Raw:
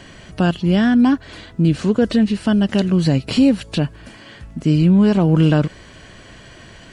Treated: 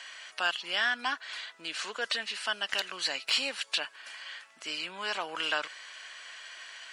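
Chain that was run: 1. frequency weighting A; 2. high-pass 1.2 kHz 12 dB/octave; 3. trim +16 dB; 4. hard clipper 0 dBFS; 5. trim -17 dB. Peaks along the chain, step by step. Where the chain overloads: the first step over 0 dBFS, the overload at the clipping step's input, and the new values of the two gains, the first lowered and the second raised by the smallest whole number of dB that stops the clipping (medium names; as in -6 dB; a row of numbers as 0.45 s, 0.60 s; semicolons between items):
-5.5 dBFS, -9.5 dBFS, +6.5 dBFS, 0.0 dBFS, -17.0 dBFS; step 3, 6.5 dB; step 3 +9 dB, step 5 -10 dB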